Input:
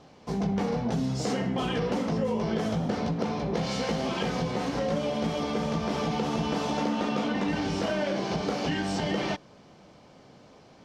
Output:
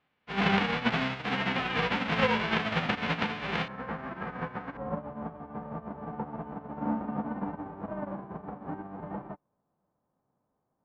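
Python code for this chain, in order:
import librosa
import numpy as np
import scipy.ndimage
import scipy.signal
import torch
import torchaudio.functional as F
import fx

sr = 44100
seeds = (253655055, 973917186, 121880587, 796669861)

y = fx.envelope_flatten(x, sr, power=0.1)
y = fx.lowpass(y, sr, hz=fx.steps((0.0, 2800.0), (3.68, 1600.0), (4.77, 1000.0)), slope=24)
y = fx.upward_expand(y, sr, threshold_db=-46.0, expansion=2.5)
y = y * librosa.db_to_amplitude(8.5)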